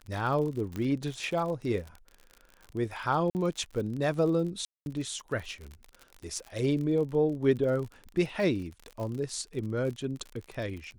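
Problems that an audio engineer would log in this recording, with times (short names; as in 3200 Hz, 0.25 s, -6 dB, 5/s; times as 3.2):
crackle 50/s -36 dBFS
0.76 pop -22 dBFS
3.3–3.35 gap 49 ms
4.65–4.86 gap 0.211 s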